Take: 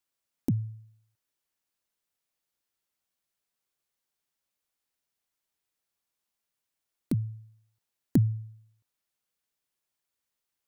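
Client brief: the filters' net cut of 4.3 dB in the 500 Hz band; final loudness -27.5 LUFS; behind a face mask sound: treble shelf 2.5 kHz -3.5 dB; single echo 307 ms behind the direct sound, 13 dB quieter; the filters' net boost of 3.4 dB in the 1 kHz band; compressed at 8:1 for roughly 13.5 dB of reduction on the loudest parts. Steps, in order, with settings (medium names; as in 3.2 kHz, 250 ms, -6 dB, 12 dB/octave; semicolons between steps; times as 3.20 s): peaking EQ 500 Hz -8.5 dB; peaking EQ 1 kHz +8.5 dB; compression 8:1, threshold -33 dBFS; treble shelf 2.5 kHz -3.5 dB; delay 307 ms -13 dB; trim +15 dB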